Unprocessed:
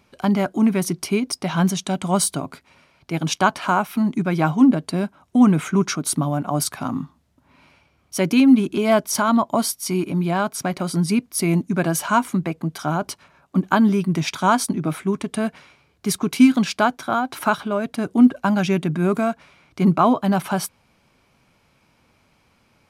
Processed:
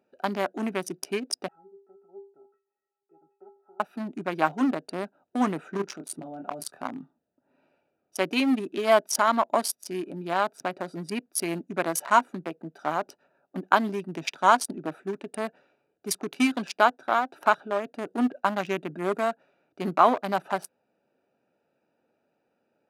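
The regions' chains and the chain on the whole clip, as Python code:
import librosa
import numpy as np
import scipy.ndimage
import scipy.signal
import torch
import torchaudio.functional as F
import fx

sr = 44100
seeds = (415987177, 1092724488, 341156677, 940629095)

y = fx.chain(x, sr, fx.lowpass(hz=1900.0, slope=24),
    fx.env_lowpass_down(base_hz=580.0, full_db=-19.0),
    fx.stiff_resonator(f0_hz=390.0, decay_s=0.4, stiffness=0.03), at=(1.48, 3.8))
y = fx.chain(y, sr, fx.level_steps(step_db=9),
    fx.doubler(ms=25.0, db=-5.5), at=(5.77, 6.81))
y = fx.wiener(y, sr, points=41)
y = scipy.signal.sosfilt(scipy.signal.butter(2, 480.0, 'highpass', fs=sr, output='sos'), y)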